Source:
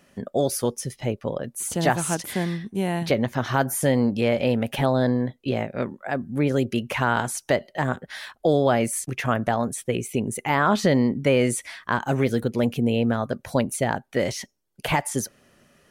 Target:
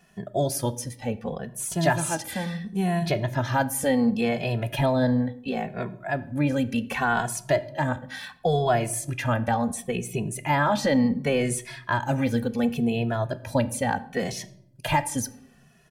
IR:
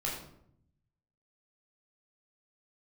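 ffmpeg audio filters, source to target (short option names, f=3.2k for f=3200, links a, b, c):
-filter_complex "[0:a]aecho=1:1:1.2:0.33,asplit=2[a][b];[1:a]atrim=start_sample=2205[c];[b][c]afir=irnorm=-1:irlink=0,volume=-16dB[d];[a][d]amix=inputs=2:normalize=0,asplit=2[e][f];[f]adelay=2.3,afreqshift=-0.7[g];[e][g]amix=inputs=2:normalize=1"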